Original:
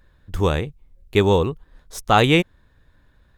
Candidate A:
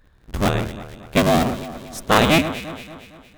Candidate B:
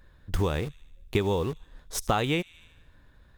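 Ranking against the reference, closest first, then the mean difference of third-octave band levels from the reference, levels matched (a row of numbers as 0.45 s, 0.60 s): B, A; 5.5 dB, 10.0 dB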